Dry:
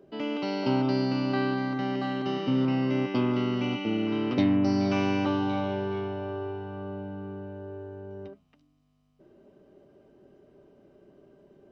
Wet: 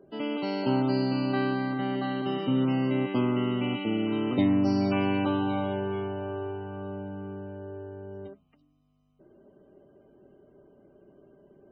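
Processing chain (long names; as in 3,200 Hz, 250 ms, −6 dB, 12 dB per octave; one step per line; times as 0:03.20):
noise that follows the level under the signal 29 dB
spectral peaks only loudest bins 64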